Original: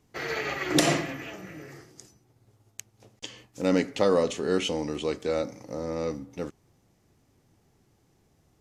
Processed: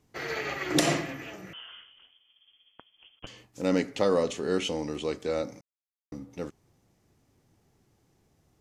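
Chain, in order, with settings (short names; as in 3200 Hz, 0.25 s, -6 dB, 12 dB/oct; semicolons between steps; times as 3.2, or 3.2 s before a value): 1.53–3.27 inverted band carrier 3300 Hz; 5.61–6.12 mute; gain -2 dB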